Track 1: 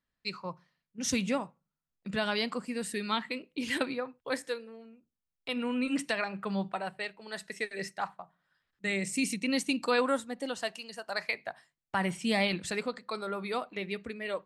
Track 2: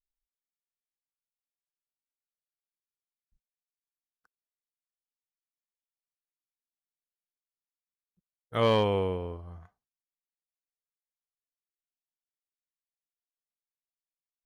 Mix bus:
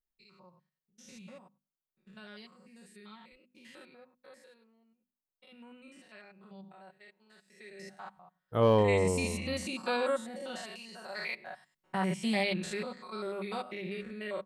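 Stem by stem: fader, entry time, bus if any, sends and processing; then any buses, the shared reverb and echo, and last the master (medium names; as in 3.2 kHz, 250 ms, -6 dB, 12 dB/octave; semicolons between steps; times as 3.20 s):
7.39 s -18.5 dB -> 7.80 s -8.5 dB -> 8.62 s -8.5 dB -> 8.95 s -1.5 dB, 0.00 s, no send, spectrogram pixelated in time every 100 ms; hum notches 50/100/150/200/250 Hz; comb 5.4 ms, depth 65%
+1.0 dB, 0.00 s, no send, ten-band graphic EQ 2 kHz -11 dB, 4 kHz -7 dB, 8 kHz -9 dB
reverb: none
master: none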